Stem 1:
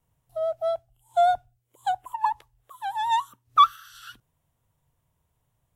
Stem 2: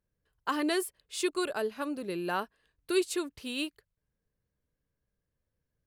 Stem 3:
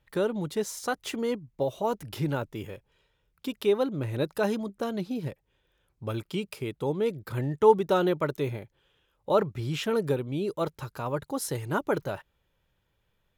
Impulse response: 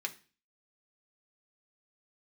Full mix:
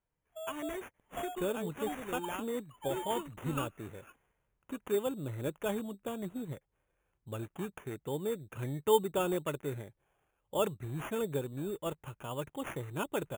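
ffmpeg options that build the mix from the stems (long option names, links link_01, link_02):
-filter_complex "[0:a]highpass=260,acompressor=threshold=-25dB:ratio=6,volume=-14dB[link_01];[1:a]acompressor=threshold=-32dB:ratio=4,volume=-5.5dB[link_02];[2:a]adelay=1250,volume=-7.5dB[link_03];[link_01][link_02][link_03]amix=inputs=3:normalize=0,acrusher=samples=11:mix=1:aa=0.000001,asuperstop=centerf=4900:order=4:qfactor=1.4"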